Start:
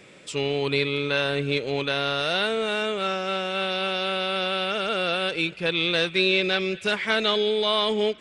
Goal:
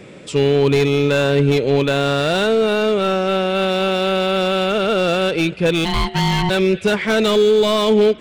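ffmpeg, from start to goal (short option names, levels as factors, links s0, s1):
-filter_complex "[0:a]asplit=3[s0][s1][s2];[s0]afade=t=out:st=5.84:d=0.02[s3];[s1]aeval=exprs='val(0)*sin(2*PI*540*n/s)':c=same,afade=t=in:st=5.84:d=0.02,afade=t=out:st=6.49:d=0.02[s4];[s2]afade=t=in:st=6.49:d=0.02[s5];[s3][s4][s5]amix=inputs=3:normalize=0,asoftclip=type=hard:threshold=0.0891,tiltshelf=f=820:g=5.5,volume=2.82"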